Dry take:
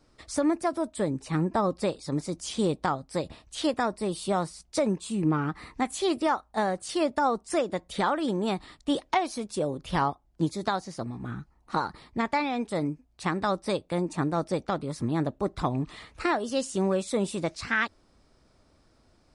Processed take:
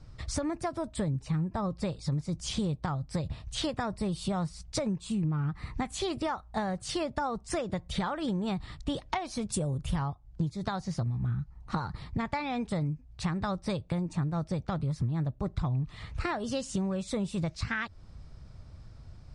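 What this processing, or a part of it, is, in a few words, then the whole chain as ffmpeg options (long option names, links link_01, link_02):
jukebox: -filter_complex "[0:a]lowpass=7600,lowshelf=frequency=190:width_type=q:width=1.5:gain=13.5,acompressor=threshold=-32dB:ratio=6,asettb=1/sr,asplit=3[link_01][link_02][link_03];[link_01]atrim=end=9.524[link_04];[link_02]atrim=start=9.52:end=9.96,asetpts=PTS-STARTPTS,afade=type=in:duration=0.004:curve=qsin,afade=type=out:start_time=0.436:duration=0.004:curve=qsin,highshelf=frequency=6600:width_type=q:width=1.5:gain=8.5[link_05];[link_03]atrim=start=9.956[link_06];[link_04][link_05]acrossfade=duration=0.004:curve1=hsin:curve2=qsin[link_07];[link_07][link_06]acrossfade=duration=0.004:curve1=qsin:curve2=hsin,volume=3dB"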